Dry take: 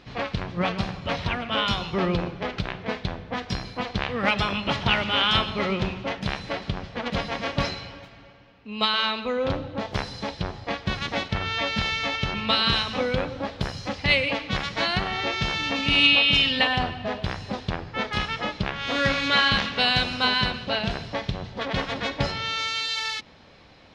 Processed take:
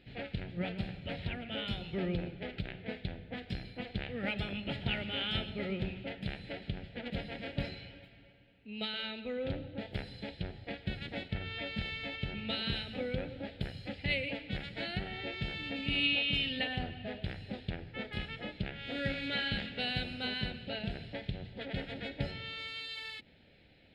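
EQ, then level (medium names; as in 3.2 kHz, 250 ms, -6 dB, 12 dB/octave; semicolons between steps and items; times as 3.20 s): static phaser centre 2.6 kHz, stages 4; dynamic bell 2.9 kHz, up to -4 dB, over -36 dBFS, Q 0.73; -8.5 dB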